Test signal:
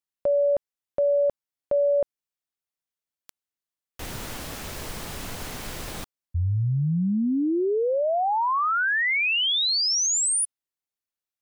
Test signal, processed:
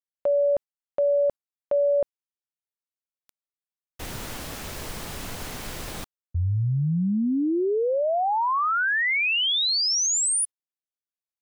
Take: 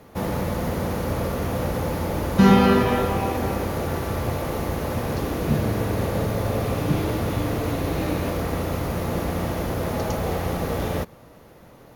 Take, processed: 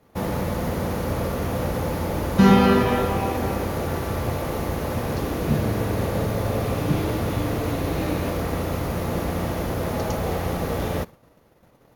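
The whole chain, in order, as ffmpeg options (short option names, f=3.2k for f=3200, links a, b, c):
-af "agate=range=-12dB:threshold=-42dB:ratio=3:release=102:detection=peak"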